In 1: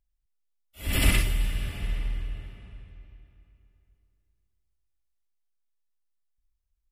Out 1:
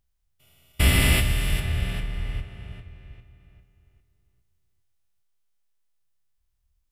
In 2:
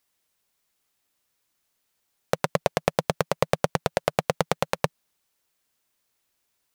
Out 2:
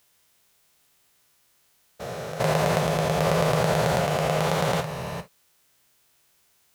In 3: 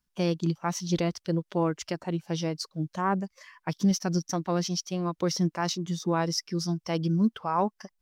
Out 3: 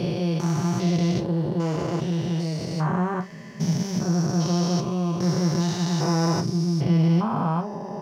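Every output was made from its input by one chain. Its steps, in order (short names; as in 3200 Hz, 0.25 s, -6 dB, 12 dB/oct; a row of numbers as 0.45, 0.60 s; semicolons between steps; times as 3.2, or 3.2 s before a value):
stepped spectrum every 0.4 s; non-linear reverb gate 90 ms falling, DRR 5 dB; match loudness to -24 LUFS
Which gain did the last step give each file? +7.0, +11.5, +7.5 dB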